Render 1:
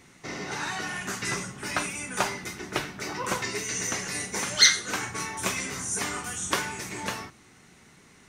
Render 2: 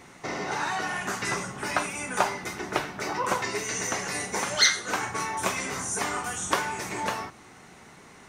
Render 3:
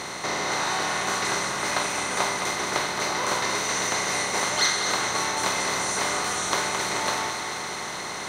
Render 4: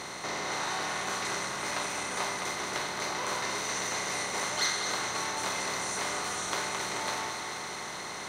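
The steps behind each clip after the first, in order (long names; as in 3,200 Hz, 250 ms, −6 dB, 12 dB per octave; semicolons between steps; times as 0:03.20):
parametric band 780 Hz +8.5 dB 1.9 octaves; in parallel at +2 dB: downward compressor, threshold −34 dBFS, peak gain reduction 20.5 dB; on the sum: level −5 dB
compressor on every frequency bin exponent 0.4; feedback echo with a high-pass in the loop 216 ms, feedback 70%, level −7.5 dB; level −5.5 dB
saturating transformer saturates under 2,700 Hz; level −5.5 dB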